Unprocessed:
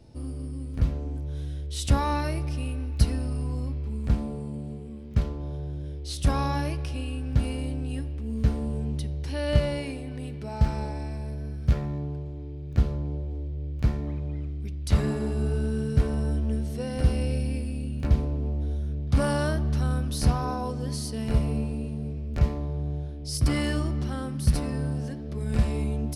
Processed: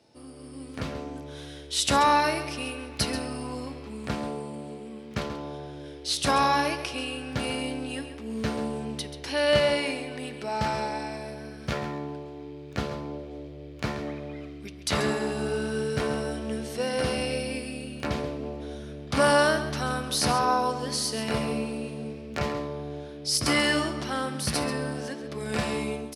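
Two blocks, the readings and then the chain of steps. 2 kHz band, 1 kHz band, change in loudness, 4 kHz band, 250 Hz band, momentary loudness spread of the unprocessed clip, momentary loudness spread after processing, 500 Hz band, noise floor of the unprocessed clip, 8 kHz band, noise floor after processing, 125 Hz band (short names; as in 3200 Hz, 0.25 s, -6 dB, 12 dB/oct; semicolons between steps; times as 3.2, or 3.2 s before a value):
+10.0 dB, +8.5 dB, +0.5 dB, +9.5 dB, -0.5 dB, 9 LU, 16 LU, +6.0 dB, -36 dBFS, +7.5 dB, -42 dBFS, -10.0 dB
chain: weighting filter A; AGC gain up to 8.5 dB; on a send: echo 0.135 s -11.5 dB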